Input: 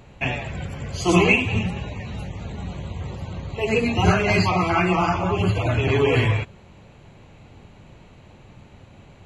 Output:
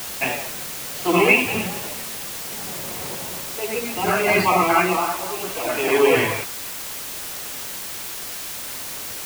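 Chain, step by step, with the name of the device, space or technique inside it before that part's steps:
0:04.97–0:06.10: high-pass filter 230 Hz 12 dB per octave
shortwave radio (band-pass filter 300–2,900 Hz; amplitude tremolo 0.66 Hz, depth 69%; white noise bed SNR 8 dB)
level +5.5 dB

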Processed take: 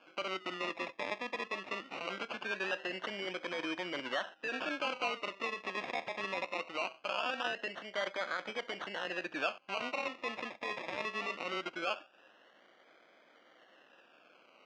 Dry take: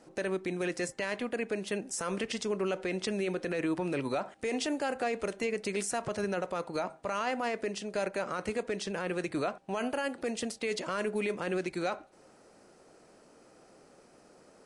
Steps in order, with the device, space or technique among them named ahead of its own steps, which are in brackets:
circuit-bent sampling toy (sample-and-hold swept by an LFO 23×, swing 60% 0.21 Hz; loudspeaker in its box 410–4,800 Hz, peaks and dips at 420 Hz −8 dB, 850 Hz −3 dB, 1,600 Hz +6 dB, 2,700 Hz +9 dB, 4,100 Hz −4 dB)
parametric band 10,000 Hz +3.5 dB 0.26 octaves
level −2 dB

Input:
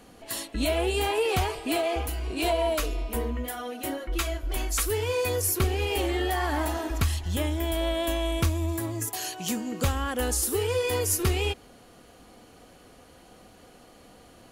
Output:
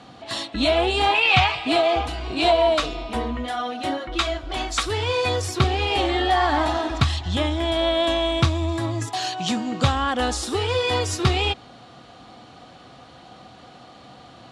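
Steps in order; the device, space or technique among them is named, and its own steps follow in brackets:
0:01.14–0:01.67: graphic EQ with 15 bands 400 Hz −11 dB, 2,500 Hz +11 dB, 10,000 Hz −8 dB
car door speaker (loudspeaker in its box 81–6,900 Hz, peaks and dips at 130 Hz +8 dB, 440 Hz −6 dB, 760 Hz +6 dB, 1,200 Hz +5 dB, 3,700 Hz +8 dB, 6,500 Hz −5 dB)
level +5.5 dB

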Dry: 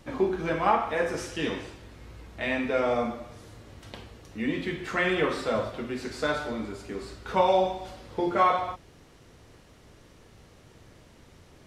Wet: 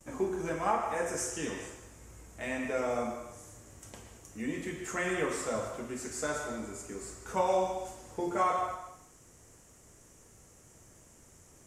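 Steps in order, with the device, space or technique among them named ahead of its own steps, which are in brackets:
filtered reverb send (on a send at −6 dB: high-pass filter 440 Hz + low-pass filter 6,000 Hz + convolution reverb RT60 0.65 s, pre-delay 108 ms)
on the sum: noise gate with hold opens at −48 dBFS
high shelf with overshoot 5,400 Hz +10.5 dB, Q 3
level −6.5 dB

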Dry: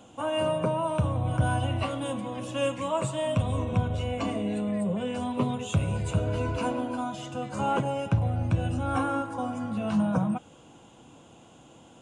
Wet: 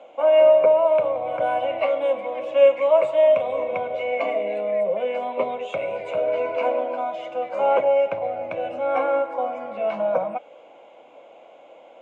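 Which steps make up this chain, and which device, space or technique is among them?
tin-can telephone (band-pass filter 510–2,800 Hz; hollow resonant body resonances 580/2,200 Hz, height 18 dB, ringing for 20 ms)

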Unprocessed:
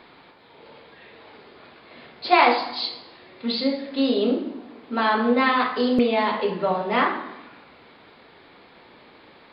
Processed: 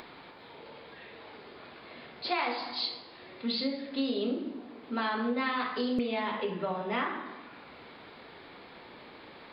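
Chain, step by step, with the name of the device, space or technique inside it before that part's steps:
0:06.20–0:07.26: notch filter 4,400 Hz, Q 5.6
upward and downward compression (upward compression, threshold −38 dBFS; downward compressor 4 to 1, threshold −21 dBFS, peak gain reduction 8.5 dB)
dynamic equaliser 670 Hz, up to −4 dB, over −36 dBFS, Q 0.73
level −4.5 dB

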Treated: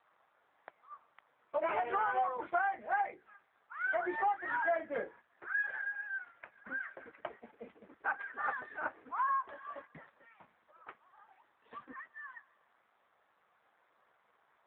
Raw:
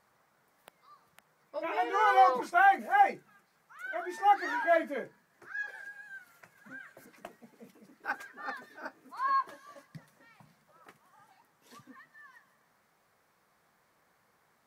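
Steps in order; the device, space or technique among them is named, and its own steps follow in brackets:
low-pass filter 5,000 Hz 24 dB per octave
noise gate −57 dBFS, range −7 dB
0:05.75–0:06.74: low-shelf EQ 280 Hz +5 dB
voicemail (band-pass filter 400–2,600 Hz; downward compressor 10 to 1, threshold −38 dBFS, peak gain reduction 20 dB; level +9 dB; AMR narrowband 7.4 kbit/s 8,000 Hz)

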